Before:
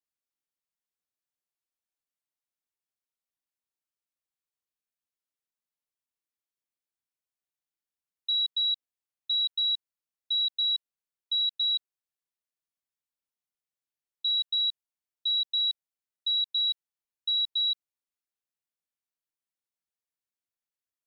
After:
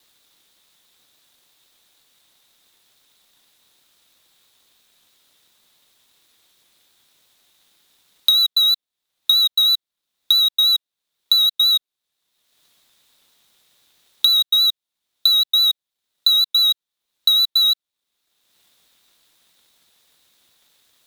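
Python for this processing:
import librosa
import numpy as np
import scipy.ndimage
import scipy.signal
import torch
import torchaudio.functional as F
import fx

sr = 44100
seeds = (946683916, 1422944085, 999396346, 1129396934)

p1 = fx.halfwave_hold(x, sr)
p2 = fx.peak_eq(p1, sr, hz=3700.0, db=12.0, octaves=0.4)
p3 = 10.0 ** (-20.5 / 20.0) * np.tanh(p2 / 10.0 ** (-20.5 / 20.0))
p4 = p2 + (p3 * 10.0 ** (-5.5 / 20.0))
p5 = fx.vibrato(p4, sr, rate_hz=6.1, depth_cents=38.0)
p6 = fx.band_squash(p5, sr, depth_pct=100)
y = p6 * 10.0 ** (-3.0 / 20.0)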